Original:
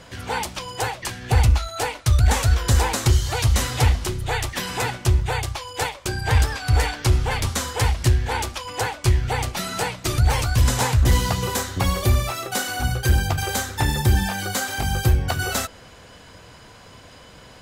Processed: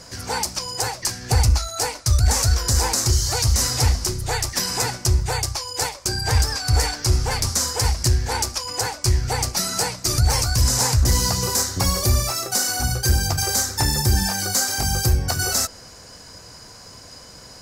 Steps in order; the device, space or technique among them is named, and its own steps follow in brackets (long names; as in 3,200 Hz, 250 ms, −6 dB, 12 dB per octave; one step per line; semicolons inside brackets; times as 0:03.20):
over-bright horn tweeter (high shelf with overshoot 4,100 Hz +7 dB, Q 3; brickwall limiter −9 dBFS, peak gain reduction 6.5 dB)